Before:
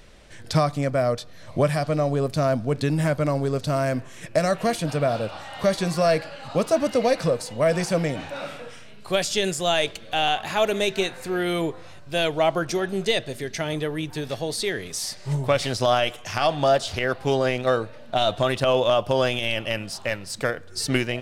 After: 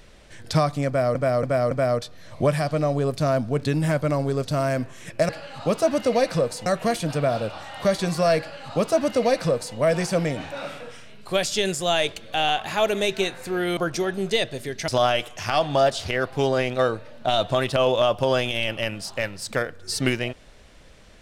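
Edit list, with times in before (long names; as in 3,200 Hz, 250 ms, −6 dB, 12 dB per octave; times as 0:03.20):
0:00.87–0:01.15: repeat, 4 plays
0:06.18–0:07.55: duplicate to 0:04.45
0:11.56–0:12.52: remove
0:13.63–0:15.76: remove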